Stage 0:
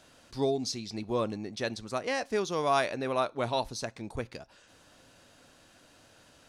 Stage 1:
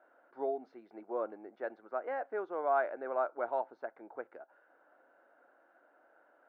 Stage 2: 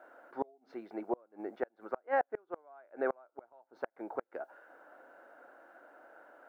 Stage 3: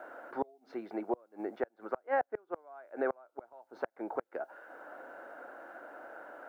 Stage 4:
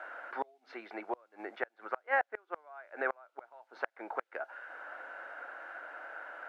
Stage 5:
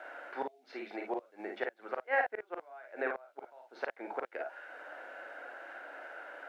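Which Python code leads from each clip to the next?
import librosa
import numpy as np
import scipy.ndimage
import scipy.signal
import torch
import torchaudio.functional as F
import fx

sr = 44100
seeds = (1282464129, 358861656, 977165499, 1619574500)

y1 = scipy.signal.sosfilt(scipy.signal.cheby1(3, 1.0, [330.0, 1600.0], 'bandpass', fs=sr, output='sos'), x)
y1 = y1 + 0.33 * np.pad(y1, (int(1.4 * sr / 1000.0), 0))[:len(y1)]
y1 = F.gain(torch.from_numpy(y1), -4.0).numpy()
y2 = fx.gate_flip(y1, sr, shuts_db=-29.0, range_db=-35)
y2 = F.gain(torch.from_numpy(y2), 9.0).numpy()
y3 = fx.band_squash(y2, sr, depth_pct=40)
y3 = F.gain(torch.from_numpy(y3), 2.0).numpy()
y4 = fx.bandpass_q(y3, sr, hz=2400.0, q=1.1)
y4 = F.gain(torch.from_numpy(y4), 10.0).numpy()
y5 = fx.peak_eq(y4, sr, hz=1200.0, db=-9.0, octaves=1.2)
y5 = fx.room_early_taps(y5, sr, ms=(39, 53), db=(-7.0, -5.0))
y5 = F.gain(torch.from_numpy(y5), 2.5).numpy()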